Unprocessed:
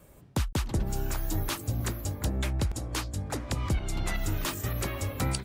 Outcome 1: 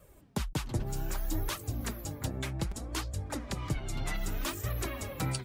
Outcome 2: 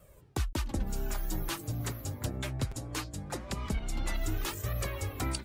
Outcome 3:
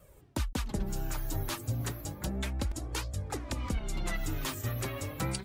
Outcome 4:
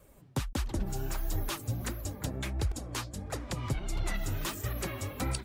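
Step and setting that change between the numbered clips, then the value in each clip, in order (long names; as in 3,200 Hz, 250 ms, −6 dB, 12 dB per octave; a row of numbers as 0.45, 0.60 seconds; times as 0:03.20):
flanger, speed: 0.64, 0.21, 0.32, 1.5 Hertz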